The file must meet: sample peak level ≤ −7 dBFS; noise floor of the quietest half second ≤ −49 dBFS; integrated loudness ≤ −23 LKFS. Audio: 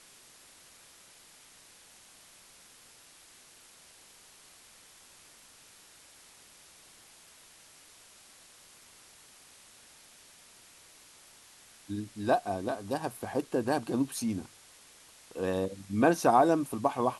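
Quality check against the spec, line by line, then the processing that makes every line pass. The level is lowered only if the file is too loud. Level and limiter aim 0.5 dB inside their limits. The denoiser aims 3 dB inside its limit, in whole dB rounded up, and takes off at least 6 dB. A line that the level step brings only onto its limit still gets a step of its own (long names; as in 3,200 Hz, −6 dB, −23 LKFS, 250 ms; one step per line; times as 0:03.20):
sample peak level −11.0 dBFS: in spec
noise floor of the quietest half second −57 dBFS: in spec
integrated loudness −30.0 LKFS: in spec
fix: no processing needed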